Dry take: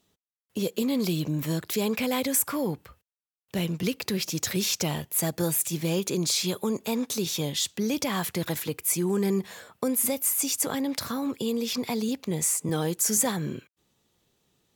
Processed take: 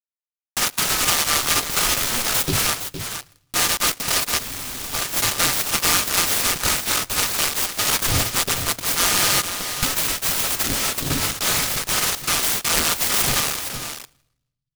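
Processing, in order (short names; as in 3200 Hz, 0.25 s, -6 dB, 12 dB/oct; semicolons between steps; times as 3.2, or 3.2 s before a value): band-swap scrambler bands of 1000 Hz; low shelf 470 Hz +11.5 dB; comb 7.4 ms, depth 40%; de-hum 113 Hz, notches 36; in parallel at -8 dB: soft clip -22.5 dBFS, distortion -13 dB; on the sum: bit-crush 5-bit; echo 0.463 s -9 dB; on a send at -20 dB: reverb RT60 0.85 s, pre-delay 4 ms; on the sum: spectral freeze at 4.42, 0.51 s; noise-modulated delay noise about 3800 Hz, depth 0.22 ms; gain +2 dB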